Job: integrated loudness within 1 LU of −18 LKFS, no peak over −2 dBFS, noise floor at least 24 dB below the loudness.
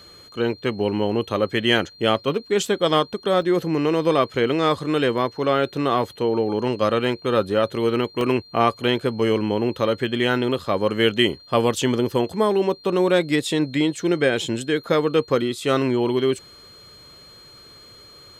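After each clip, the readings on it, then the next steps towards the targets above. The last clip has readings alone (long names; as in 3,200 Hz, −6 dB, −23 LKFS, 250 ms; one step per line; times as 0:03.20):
number of dropouts 3; longest dropout 1.8 ms; interfering tone 4,200 Hz; level of the tone −45 dBFS; integrated loudness −21.5 LKFS; sample peak −4.5 dBFS; target loudness −18.0 LKFS
→ repair the gap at 0:03.42/0:05.58/0:08.21, 1.8 ms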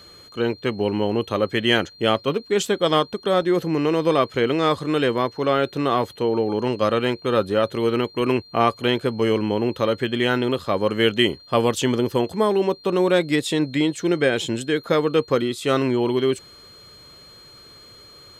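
number of dropouts 0; interfering tone 4,200 Hz; level of the tone −45 dBFS
→ notch filter 4,200 Hz, Q 30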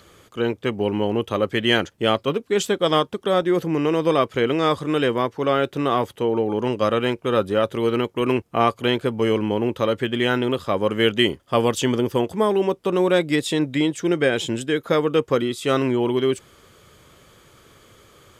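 interfering tone none found; integrated loudness −21.5 LKFS; sample peak −4.5 dBFS; target loudness −18.0 LKFS
→ level +3.5 dB
brickwall limiter −2 dBFS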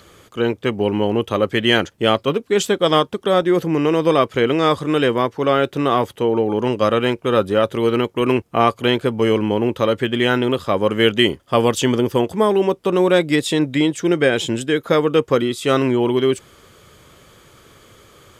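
integrated loudness −18.0 LKFS; sample peak −2.0 dBFS; background noise floor −51 dBFS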